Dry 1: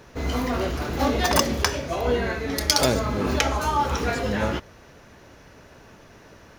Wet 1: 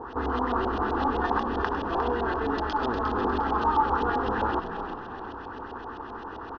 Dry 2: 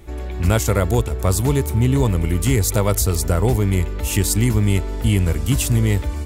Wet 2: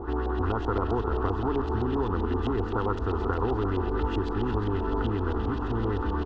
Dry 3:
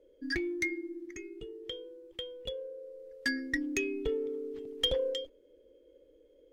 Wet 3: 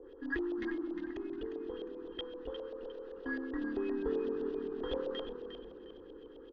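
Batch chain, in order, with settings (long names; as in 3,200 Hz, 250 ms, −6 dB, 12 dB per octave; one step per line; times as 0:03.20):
compressor on every frequency bin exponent 0.6
low-shelf EQ 110 Hz −5 dB
downward compressor, threshold −18 dBFS
noise that follows the level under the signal 12 dB
phaser with its sweep stopped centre 600 Hz, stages 6
auto-filter low-pass saw up 7.7 Hz 650–3,400 Hz
high-frequency loss of the air 220 metres
on a send: echo with shifted repeats 355 ms, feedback 33%, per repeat −39 Hz, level −8.5 dB
on the sum: level −2 dB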